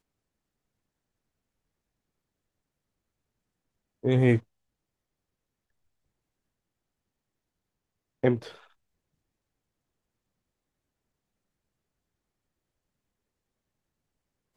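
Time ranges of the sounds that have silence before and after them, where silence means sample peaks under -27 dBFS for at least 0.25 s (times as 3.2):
4.05–4.37
8.24–8.35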